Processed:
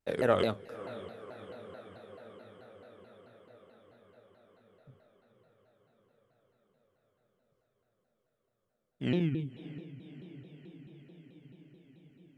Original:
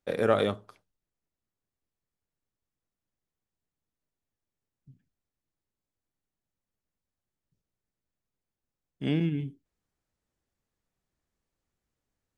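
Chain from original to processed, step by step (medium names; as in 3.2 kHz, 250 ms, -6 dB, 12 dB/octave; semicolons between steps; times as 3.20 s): echo that smears into a reverb 569 ms, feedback 70%, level -15 dB; vibrato with a chosen wave saw down 4.6 Hz, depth 250 cents; trim -2.5 dB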